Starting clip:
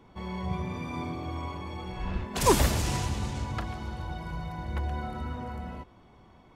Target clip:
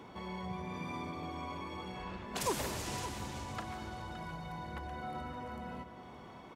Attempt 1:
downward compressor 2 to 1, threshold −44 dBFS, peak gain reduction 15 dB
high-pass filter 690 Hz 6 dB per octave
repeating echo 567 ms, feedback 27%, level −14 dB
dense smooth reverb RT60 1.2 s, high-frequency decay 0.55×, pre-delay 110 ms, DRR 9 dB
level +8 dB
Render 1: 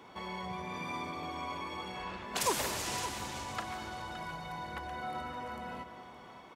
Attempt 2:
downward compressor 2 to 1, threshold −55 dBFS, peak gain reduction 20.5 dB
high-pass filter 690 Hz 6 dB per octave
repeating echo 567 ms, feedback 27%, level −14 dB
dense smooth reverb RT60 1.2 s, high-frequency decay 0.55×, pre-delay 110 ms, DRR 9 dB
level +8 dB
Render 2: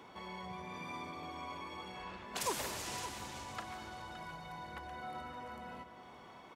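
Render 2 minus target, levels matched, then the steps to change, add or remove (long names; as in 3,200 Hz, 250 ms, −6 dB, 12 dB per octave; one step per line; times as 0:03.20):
250 Hz band −4.5 dB
change: high-pass filter 220 Hz 6 dB per octave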